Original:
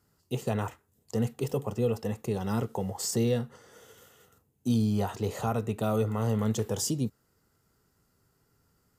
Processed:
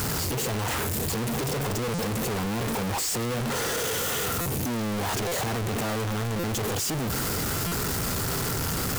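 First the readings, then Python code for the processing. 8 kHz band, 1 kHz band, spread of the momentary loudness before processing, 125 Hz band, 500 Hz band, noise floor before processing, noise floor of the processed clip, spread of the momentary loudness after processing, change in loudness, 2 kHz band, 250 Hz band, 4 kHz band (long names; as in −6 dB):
+9.5 dB, +7.0 dB, 7 LU, +2.0 dB, +1.5 dB, −72 dBFS, −28 dBFS, 2 LU, +3.0 dB, +15.0 dB, +1.0 dB, +11.5 dB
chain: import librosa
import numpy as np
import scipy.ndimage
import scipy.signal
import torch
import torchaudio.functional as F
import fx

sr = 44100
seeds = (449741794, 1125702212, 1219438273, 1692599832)

y = np.sign(x) * np.sqrt(np.mean(np.square(x)))
y = fx.buffer_glitch(y, sr, at_s=(1.94, 4.41, 5.27, 6.39, 7.67), block=256, repeats=7)
y = y * 10.0 ** (3.5 / 20.0)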